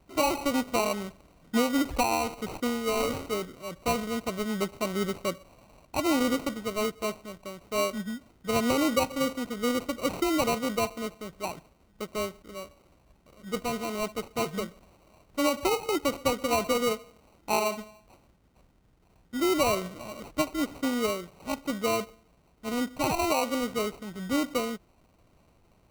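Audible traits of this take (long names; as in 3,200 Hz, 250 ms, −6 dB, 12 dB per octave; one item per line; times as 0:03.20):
aliases and images of a low sample rate 1,700 Hz, jitter 0%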